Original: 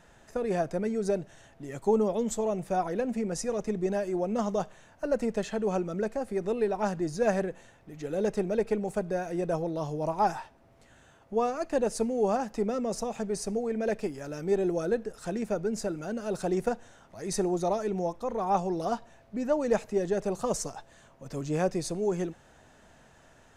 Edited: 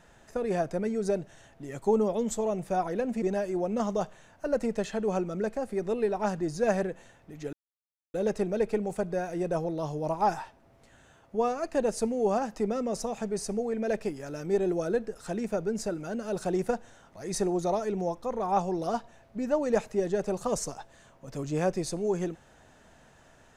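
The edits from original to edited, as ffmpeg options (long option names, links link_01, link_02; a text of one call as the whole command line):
ffmpeg -i in.wav -filter_complex "[0:a]asplit=3[link_01][link_02][link_03];[link_01]atrim=end=3.222[link_04];[link_02]atrim=start=3.808:end=8.12,asetpts=PTS-STARTPTS,afade=type=out:start_time=4.308:duration=0.004:curve=hsin,apad=pad_dur=0.61[link_05];[link_03]atrim=start=8.12,asetpts=PTS-STARTPTS,afade=type=in:duration=0.004:curve=hsin[link_06];[link_05][link_06]concat=n=2:v=0:a=1[link_07];[link_04][link_07]acrossfade=duration=0.004:curve1=hsin:curve2=hsin" out.wav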